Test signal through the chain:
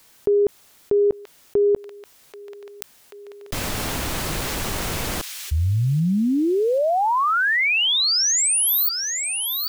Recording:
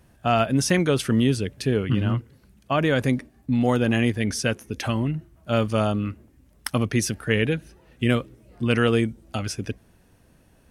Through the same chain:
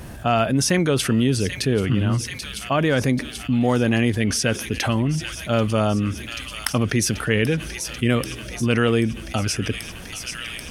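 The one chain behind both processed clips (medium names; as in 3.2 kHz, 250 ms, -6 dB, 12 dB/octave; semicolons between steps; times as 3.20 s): feedback echo behind a high-pass 785 ms, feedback 71%, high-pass 2.7 kHz, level -12.5 dB; level flattener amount 50%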